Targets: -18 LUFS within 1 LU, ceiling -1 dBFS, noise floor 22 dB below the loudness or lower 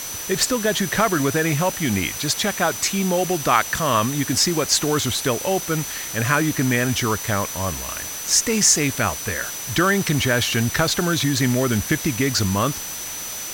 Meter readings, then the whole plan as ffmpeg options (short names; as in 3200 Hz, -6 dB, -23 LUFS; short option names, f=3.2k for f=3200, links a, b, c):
steady tone 6000 Hz; tone level -32 dBFS; noise floor -31 dBFS; noise floor target -43 dBFS; loudness -20.5 LUFS; peak -2.0 dBFS; loudness target -18.0 LUFS
-> -af "bandreject=f=6k:w=30"
-af "afftdn=nr=12:nf=-31"
-af "volume=2.5dB,alimiter=limit=-1dB:level=0:latency=1"